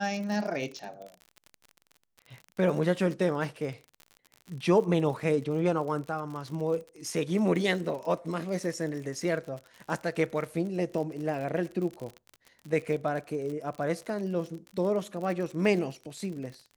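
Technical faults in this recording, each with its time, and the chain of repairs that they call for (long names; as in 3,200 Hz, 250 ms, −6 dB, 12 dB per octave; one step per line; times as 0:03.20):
surface crackle 48 per second −36 dBFS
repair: click removal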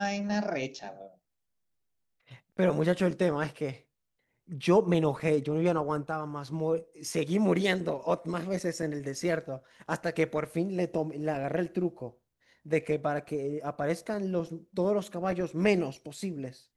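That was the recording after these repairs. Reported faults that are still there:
none of them is left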